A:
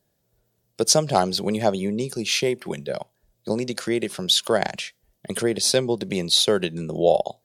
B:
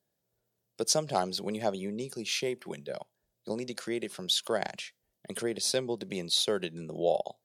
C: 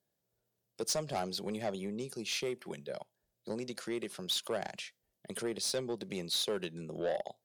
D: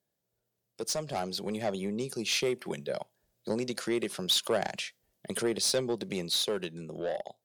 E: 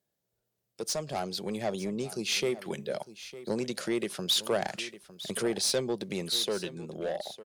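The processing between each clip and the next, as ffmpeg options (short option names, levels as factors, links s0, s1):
-af "highpass=f=150:p=1,volume=0.355"
-af "asoftclip=type=tanh:threshold=0.0596,volume=0.75"
-af "dynaudnorm=f=470:g=7:m=2.24"
-af "aecho=1:1:905:0.168"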